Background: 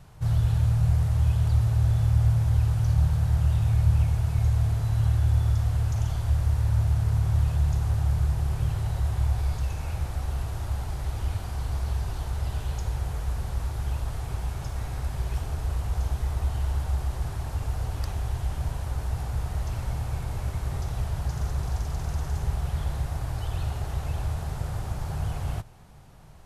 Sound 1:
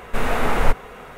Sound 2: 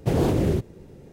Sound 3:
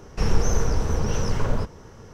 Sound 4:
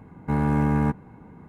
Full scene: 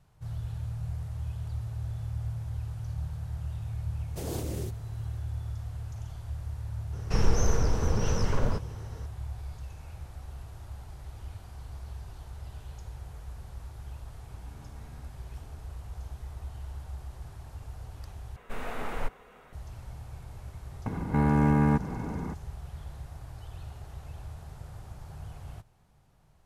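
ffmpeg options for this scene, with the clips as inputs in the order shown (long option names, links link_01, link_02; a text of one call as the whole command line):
ffmpeg -i bed.wav -i cue0.wav -i cue1.wav -i cue2.wav -i cue3.wav -filter_complex "[4:a]asplit=2[link_01][link_02];[0:a]volume=-13dB[link_03];[2:a]bass=frequency=250:gain=-4,treble=frequency=4000:gain=15[link_04];[link_01]acompressor=threshold=-37dB:ratio=6:attack=3.2:release=140:knee=1:detection=peak[link_05];[link_02]acompressor=mode=upward:threshold=-35dB:ratio=4:attack=100:release=31:knee=2.83:detection=peak[link_06];[link_03]asplit=2[link_07][link_08];[link_07]atrim=end=18.364[link_09];[1:a]atrim=end=1.17,asetpts=PTS-STARTPTS,volume=-15dB[link_10];[link_08]atrim=start=19.526[link_11];[link_04]atrim=end=1.12,asetpts=PTS-STARTPTS,volume=-14dB,afade=type=in:duration=0.004:curve=hsin,afade=type=out:start_time=1.116:duration=0.004:curve=hsin,adelay=4100[link_12];[3:a]atrim=end=2.13,asetpts=PTS-STARTPTS,volume=-3.5dB,afade=type=in:duration=0.004:curve=hsin,afade=type=out:start_time=2.126:duration=0.004:curve=hsin,adelay=6930[link_13];[link_05]atrim=end=1.48,asetpts=PTS-STARTPTS,volume=-16.5dB,afade=type=in:duration=0.004:curve=hsin,afade=type=out:start_time=1.476:duration=0.004:curve=hsin,adelay=14180[link_14];[link_06]atrim=end=1.48,asetpts=PTS-STARTPTS,volume=-1dB,afade=type=in:duration=0.004:curve=hsin,afade=type=out:start_time=1.476:duration=0.004:curve=hsin,adelay=20860[link_15];[link_09][link_10]acrossfade=duration=0.004:curve1=hsin:curve2=hsin[link_16];[link_16][link_11]acrossfade=duration=0.004:curve1=hsin:curve2=hsin[link_17];[link_17][link_12][link_13][link_14][link_15]amix=inputs=5:normalize=0" out.wav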